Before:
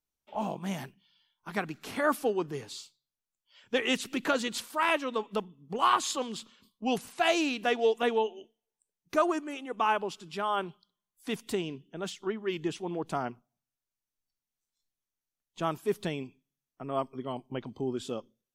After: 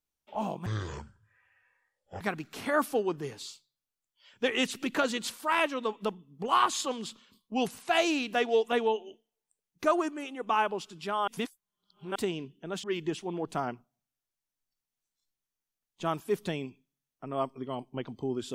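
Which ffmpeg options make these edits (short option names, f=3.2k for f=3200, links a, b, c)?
-filter_complex "[0:a]asplit=6[a][b][c][d][e][f];[a]atrim=end=0.664[g];[b]atrim=start=0.66:end=1.51,asetpts=PTS-STARTPTS,asetrate=24255,aresample=44100[h];[c]atrim=start=1.506:end=10.582[i];[d]atrim=start=10.578:end=11.462,asetpts=PTS-STARTPTS,areverse[j];[e]atrim=start=11.458:end=12.142[k];[f]atrim=start=12.408[l];[g][h]acrossfade=d=0.004:c1=hsin:c2=hsin[m];[m][i]acrossfade=d=0.004:c1=hsin:c2=hsin[n];[n][j]acrossfade=d=0.004:c1=hsin:c2=hsin[o];[o][k]acrossfade=d=0.004:c1=hsin:c2=hsin[p];[p][l]acrossfade=d=0.004:c1=hsin:c2=hsin"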